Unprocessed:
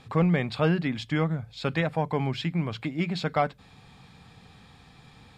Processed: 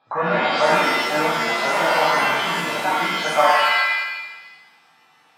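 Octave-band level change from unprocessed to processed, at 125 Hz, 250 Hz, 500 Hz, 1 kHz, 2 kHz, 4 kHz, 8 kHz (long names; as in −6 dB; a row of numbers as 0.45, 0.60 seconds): −9.5 dB, −2.5 dB, +8.5 dB, +15.0 dB, +16.0 dB, +14.5 dB, can't be measured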